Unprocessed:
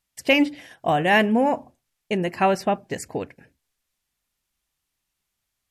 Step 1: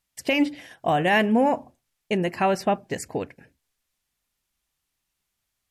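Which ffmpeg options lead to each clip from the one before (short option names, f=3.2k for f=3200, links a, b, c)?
-af "alimiter=limit=-11dB:level=0:latency=1:release=141"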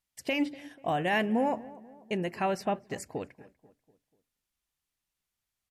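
-filter_complex "[0:a]asplit=2[a][b];[b]adelay=244,lowpass=f=1.5k:p=1,volume=-19dB,asplit=2[c][d];[d]adelay=244,lowpass=f=1.5k:p=1,volume=0.5,asplit=2[e][f];[f]adelay=244,lowpass=f=1.5k:p=1,volume=0.5,asplit=2[g][h];[h]adelay=244,lowpass=f=1.5k:p=1,volume=0.5[i];[a][c][e][g][i]amix=inputs=5:normalize=0,volume=-7.5dB"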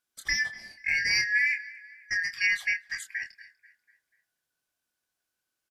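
-filter_complex "[0:a]afftfilt=real='real(if(lt(b,272),68*(eq(floor(b/68),0)*2+eq(floor(b/68),1)*0+eq(floor(b/68),2)*3+eq(floor(b/68),3)*1)+mod(b,68),b),0)':imag='imag(if(lt(b,272),68*(eq(floor(b/68),0)*2+eq(floor(b/68),1)*0+eq(floor(b/68),2)*3+eq(floor(b/68),3)*1)+mod(b,68),b),0)':win_size=2048:overlap=0.75,asplit=2[a][b];[b]adelay=26,volume=-7dB[c];[a][c]amix=inputs=2:normalize=0,volume=1dB"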